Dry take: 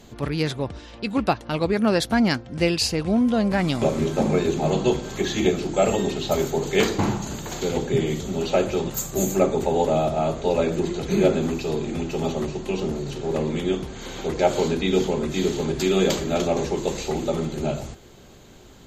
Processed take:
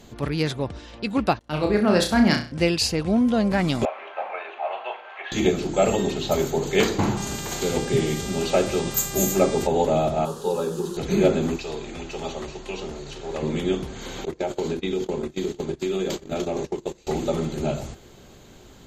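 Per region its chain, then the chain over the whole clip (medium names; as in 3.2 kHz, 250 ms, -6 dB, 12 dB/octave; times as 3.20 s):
1.39–2.52 s: gate -38 dBFS, range -9 dB + flutter echo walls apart 5.7 m, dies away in 0.4 s + three bands expanded up and down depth 40%
3.85–5.32 s: elliptic band-pass 670–2700 Hz, stop band 80 dB + doubling 37 ms -12 dB
7.16–9.66 s: peaking EQ 11 kHz +9 dB 0.91 oct + mains buzz 400 Hz, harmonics 22, -37 dBFS -2 dB/octave
10.25–10.97 s: one-bit delta coder 64 kbps, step -34 dBFS + high-pass 190 Hz 6 dB/octave + static phaser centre 430 Hz, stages 8
11.56–13.43 s: low-pass 8 kHz + peaking EQ 180 Hz -11.5 dB 2.6 oct
14.25–17.07 s: gate -25 dBFS, range -25 dB + peaking EQ 360 Hz +5.5 dB 0.37 oct + compression, threshold -22 dBFS
whole clip: none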